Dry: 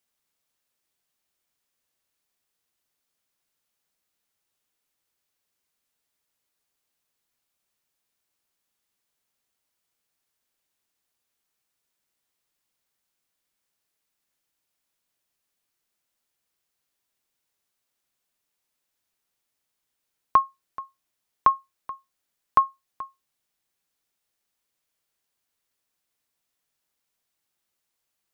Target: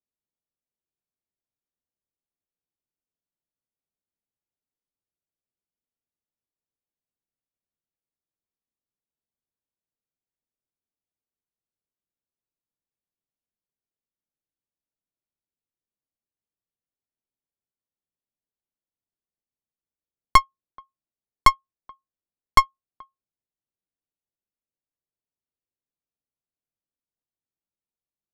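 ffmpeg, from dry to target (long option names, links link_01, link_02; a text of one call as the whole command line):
ffmpeg -i in.wav -af "adynamicsmooth=sensitivity=1:basefreq=610,aeval=exprs='0.447*(cos(1*acos(clip(val(0)/0.447,-1,1)))-cos(1*PI/2))+0.158*(cos(4*acos(clip(val(0)/0.447,-1,1)))-cos(4*PI/2))+0.0398*(cos(5*acos(clip(val(0)/0.447,-1,1)))-cos(5*PI/2))+0.0501*(cos(6*acos(clip(val(0)/0.447,-1,1)))-cos(6*PI/2))+0.0708*(cos(7*acos(clip(val(0)/0.447,-1,1)))-cos(7*PI/2))':channel_layout=same,volume=3dB" out.wav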